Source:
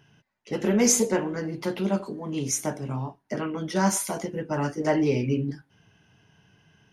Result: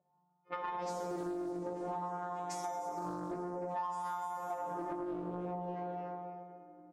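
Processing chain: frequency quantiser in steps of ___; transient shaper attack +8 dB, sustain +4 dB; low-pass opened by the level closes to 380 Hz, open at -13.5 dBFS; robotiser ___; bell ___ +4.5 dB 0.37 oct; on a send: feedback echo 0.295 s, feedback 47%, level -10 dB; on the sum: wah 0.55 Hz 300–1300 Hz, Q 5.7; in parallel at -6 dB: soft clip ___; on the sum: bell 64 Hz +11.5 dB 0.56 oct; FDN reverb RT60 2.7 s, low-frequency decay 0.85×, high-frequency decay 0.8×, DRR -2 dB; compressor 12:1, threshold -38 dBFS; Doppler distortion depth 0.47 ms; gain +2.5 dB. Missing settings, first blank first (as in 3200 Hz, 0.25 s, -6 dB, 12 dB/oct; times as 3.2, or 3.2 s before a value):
3 st, 177 Hz, 180 Hz, -35 dBFS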